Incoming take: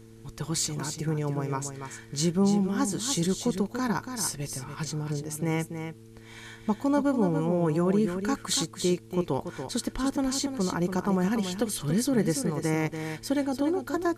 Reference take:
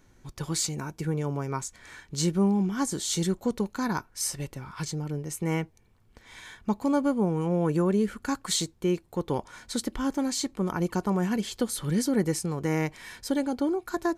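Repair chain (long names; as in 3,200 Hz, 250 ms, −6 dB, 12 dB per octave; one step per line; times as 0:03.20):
hum removal 112.4 Hz, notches 4
downward expander −38 dBFS, range −21 dB
echo removal 286 ms −8 dB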